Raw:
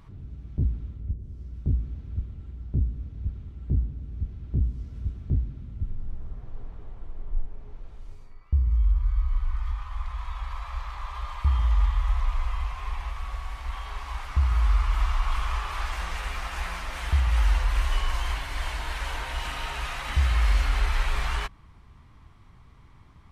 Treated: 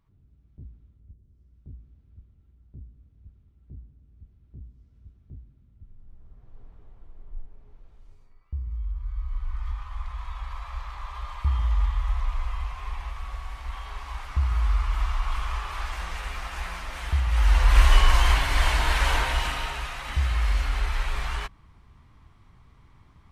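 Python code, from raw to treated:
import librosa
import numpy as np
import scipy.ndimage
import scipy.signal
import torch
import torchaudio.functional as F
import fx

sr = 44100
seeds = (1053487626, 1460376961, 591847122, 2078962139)

y = fx.gain(x, sr, db=fx.line((5.79, -19.0), (6.64, -9.5), (8.91, -9.5), (9.68, -1.5), (17.28, -1.5), (17.8, 9.0), (19.17, 9.0), (19.91, -2.0)))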